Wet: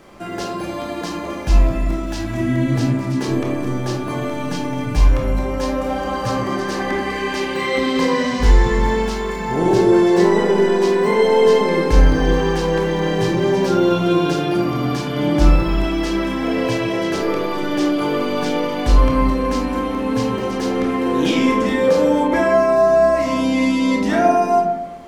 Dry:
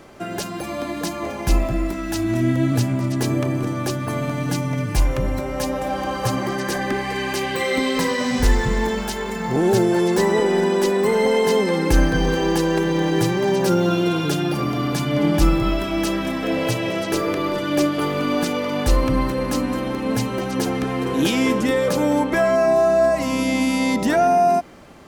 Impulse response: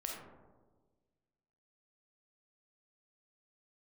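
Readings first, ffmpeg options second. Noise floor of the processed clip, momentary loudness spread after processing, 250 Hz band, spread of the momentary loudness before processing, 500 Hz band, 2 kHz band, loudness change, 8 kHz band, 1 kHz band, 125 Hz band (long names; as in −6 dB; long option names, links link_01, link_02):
−26 dBFS, 9 LU, +2.0 dB, 7 LU, +3.0 dB, +1.0 dB, +2.5 dB, −3.5 dB, +2.5 dB, +1.5 dB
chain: -filter_complex "[0:a]acrossover=split=7100[link_01][link_02];[link_02]acompressor=threshold=-48dB:ratio=4:attack=1:release=60[link_03];[link_01][link_03]amix=inputs=2:normalize=0[link_04];[1:a]atrim=start_sample=2205,asetrate=74970,aresample=44100[link_05];[link_04][link_05]afir=irnorm=-1:irlink=0,volume=6dB"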